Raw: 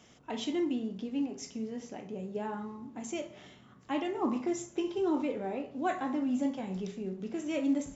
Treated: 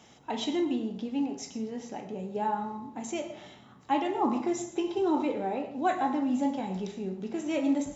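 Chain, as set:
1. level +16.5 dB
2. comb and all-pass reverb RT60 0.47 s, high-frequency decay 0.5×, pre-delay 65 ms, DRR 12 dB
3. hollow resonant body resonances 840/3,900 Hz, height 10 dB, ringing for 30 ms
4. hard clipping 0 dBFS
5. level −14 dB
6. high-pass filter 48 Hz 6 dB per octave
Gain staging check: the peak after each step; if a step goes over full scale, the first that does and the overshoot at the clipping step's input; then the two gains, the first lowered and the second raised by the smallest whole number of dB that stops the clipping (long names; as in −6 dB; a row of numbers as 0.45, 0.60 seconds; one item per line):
−3.5, −3.5, −2.0, −2.0, −16.0, −16.0 dBFS
no step passes full scale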